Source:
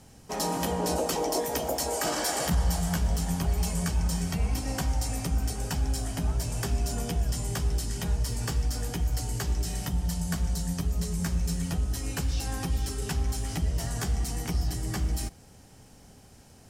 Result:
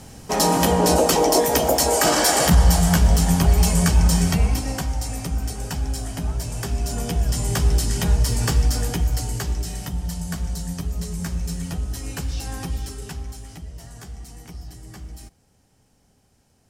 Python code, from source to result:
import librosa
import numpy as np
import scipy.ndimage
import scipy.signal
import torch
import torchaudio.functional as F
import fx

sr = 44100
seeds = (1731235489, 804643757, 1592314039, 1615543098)

y = fx.gain(x, sr, db=fx.line((4.28, 11.0), (4.87, 2.5), (6.65, 2.5), (7.68, 9.5), (8.67, 9.5), (9.79, 1.5), (12.7, 1.5), (13.66, -9.0)))